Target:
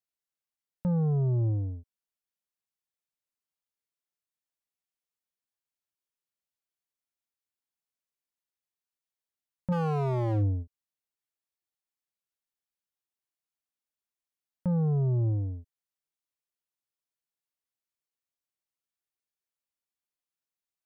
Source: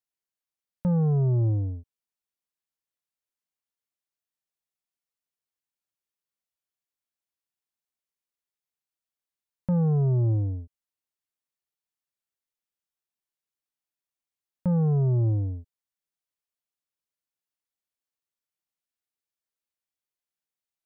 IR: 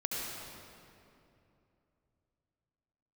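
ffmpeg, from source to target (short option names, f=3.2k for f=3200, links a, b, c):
-filter_complex "[0:a]asplit=3[a][b][c];[a]afade=t=out:st=9.71:d=0.02[d];[b]acontrast=36,afade=t=in:st=9.71:d=0.02,afade=t=out:st=10.62:d=0.02[e];[c]afade=t=in:st=10.62:d=0.02[f];[d][e][f]amix=inputs=3:normalize=0,aeval=exprs='0.112*(abs(mod(val(0)/0.112+3,4)-2)-1)':c=same,volume=-3.5dB"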